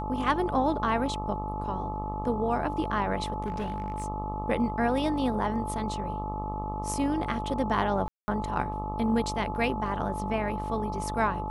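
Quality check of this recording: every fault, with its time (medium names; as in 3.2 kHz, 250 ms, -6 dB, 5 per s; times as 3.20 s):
buzz 50 Hz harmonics 26 -35 dBFS
whine 860 Hz -34 dBFS
3.46–4.06 s: clipped -27 dBFS
8.08–8.28 s: dropout 200 ms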